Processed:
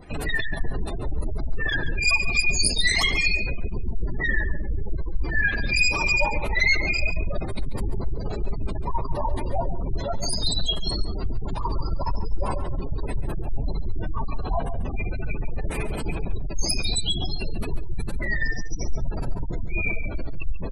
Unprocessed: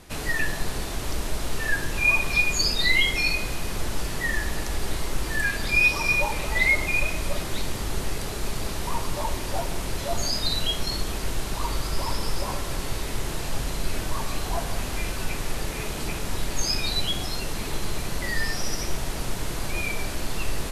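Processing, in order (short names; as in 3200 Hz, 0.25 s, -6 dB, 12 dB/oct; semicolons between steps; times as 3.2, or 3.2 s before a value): one-sided fold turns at -21.5 dBFS; spectral gate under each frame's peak -20 dB strong; resonant high shelf 7300 Hz +6 dB, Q 3; outdoor echo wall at 24 m, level -12 dB; gain +4 dB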